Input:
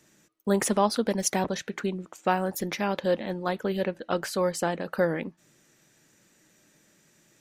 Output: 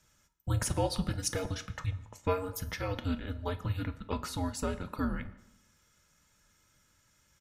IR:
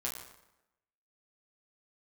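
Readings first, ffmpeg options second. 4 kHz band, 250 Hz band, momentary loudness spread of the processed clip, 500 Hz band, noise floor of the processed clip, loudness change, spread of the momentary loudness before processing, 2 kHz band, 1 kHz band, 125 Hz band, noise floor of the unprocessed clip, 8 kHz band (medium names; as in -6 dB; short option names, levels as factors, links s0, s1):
-5.0 dB, -7.5 dB, 6 LU, -10.5 dB, -69 dBFS, -7.0 dB, 7 LU, -8.5 dB, -9.5 dB, +2.0 dB, -64 dBFS, -6.0 dB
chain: -filter_complex "[0:a]aecho=1:1:2.5:0.41,asplit=2[s0][s1];[1:a]atrim=start_sample=2205[s2];[s1][s2]afir=irnorm=-1:irlink=0,volume=0.376[s3];[s0][s3]amix=inputs=2:normalize=0,afreqshift=-280,volume=0.376"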